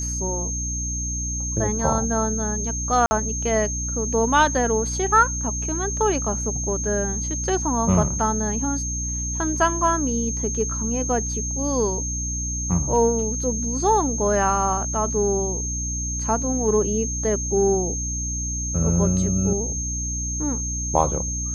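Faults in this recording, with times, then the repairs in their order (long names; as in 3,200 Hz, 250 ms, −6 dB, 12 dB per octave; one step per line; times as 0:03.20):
mains hum 60 Hz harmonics 5 −29 dBFS
whistle 6,400 Hz −27 dBFS
0:03.06–0:03.11: drop-out 50 ms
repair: hum removal 60 Hz, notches 5
notch filter 6,400 Hz, Q 30
repair the gap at 0:03.06, 50 ms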